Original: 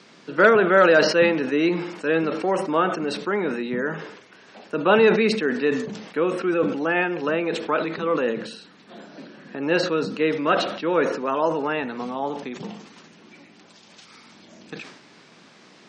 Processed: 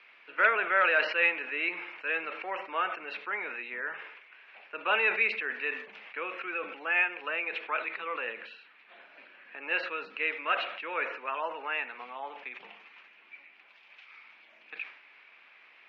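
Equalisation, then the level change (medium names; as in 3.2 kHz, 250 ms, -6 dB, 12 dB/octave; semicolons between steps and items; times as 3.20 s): high-pass 800 Hz 12 dB/octave; four-pole ladder low-pass 2.7 kHz, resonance 65%; +2.5 dB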